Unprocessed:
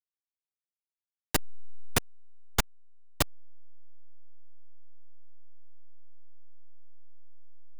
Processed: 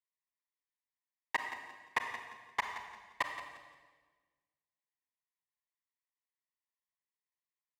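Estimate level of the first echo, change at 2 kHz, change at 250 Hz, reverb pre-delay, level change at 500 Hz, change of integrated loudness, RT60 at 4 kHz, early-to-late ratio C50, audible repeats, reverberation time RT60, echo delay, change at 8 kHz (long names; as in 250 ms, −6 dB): −12.5 dB, +1.0 dB, −19.0 dB, 33 ms, −11.0 dB, −6.5 dB, 1.3 s, 5.0 dB, 3, 1.4 s, 174 ms, −19.5 dB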